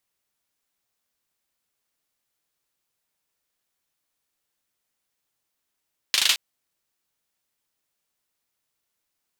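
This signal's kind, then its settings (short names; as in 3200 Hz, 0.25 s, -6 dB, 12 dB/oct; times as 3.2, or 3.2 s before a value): hand clap length 0.22 s, bursts 5, apart 38 ms, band 3300 Hz, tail 0.25 s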